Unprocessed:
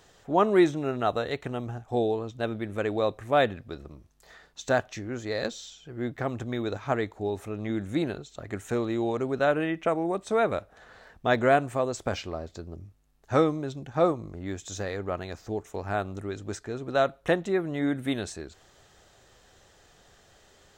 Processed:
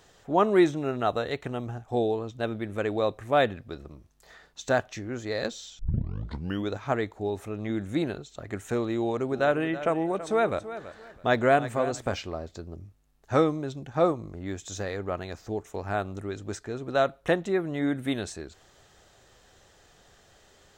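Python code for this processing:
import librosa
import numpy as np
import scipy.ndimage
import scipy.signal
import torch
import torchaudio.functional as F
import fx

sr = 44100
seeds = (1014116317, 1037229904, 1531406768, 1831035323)

y = fx.echo_feedback(x, sr, ms=329, feedback_pct=25, wet_db=-13.5, at=(8.98, 12.12))
y = fx.edit(y, sr, fx.tape_start(start_s=5.79, length_s=0.92), tone=tone)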